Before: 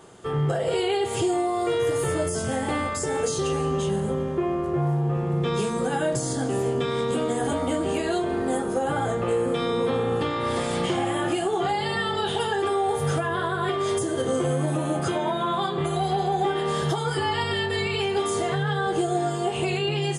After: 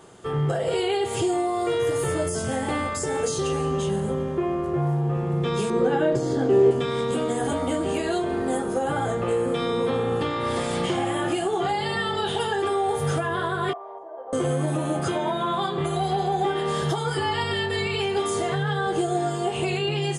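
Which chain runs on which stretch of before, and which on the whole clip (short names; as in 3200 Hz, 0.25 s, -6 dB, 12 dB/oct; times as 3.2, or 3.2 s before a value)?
5.7–6.71 LPF 3800 Hz + small resonant body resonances 390 Hz, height 11 dB, ringing for 25 ms
13.73–14.33 Butterworth band-pass 790 Hz, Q 2.2 + doubler 30 ms -11.5 dB
whole clip: dry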